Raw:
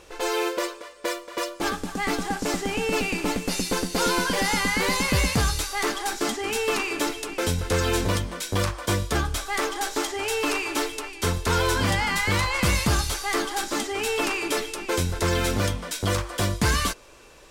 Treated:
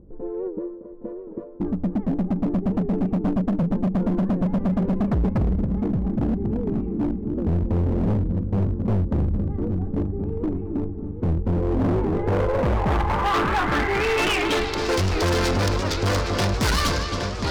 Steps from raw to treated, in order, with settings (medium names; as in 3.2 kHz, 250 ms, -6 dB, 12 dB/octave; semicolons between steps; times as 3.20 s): local Wiener filter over 15 samples; multi-head delay 272 ms, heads first and third, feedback 67%, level -12 dB; low-pass sweep 210 Hz -> 4.9 kHz, 11.46–14.87 s; hard clipper -25.5 dBFS, distortion -7 dB; warped record 78 rpm, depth 160 cents; trim +7 dB